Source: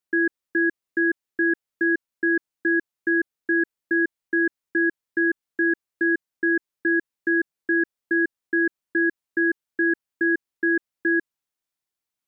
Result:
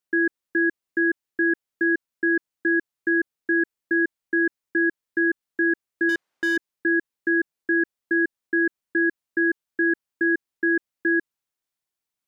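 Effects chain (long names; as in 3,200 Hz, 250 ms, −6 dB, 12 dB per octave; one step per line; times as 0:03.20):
0:06.09–0:06.57: mid-hump overdrive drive 25 dB, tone 1,100 Hz, clips at −13.5 dBFS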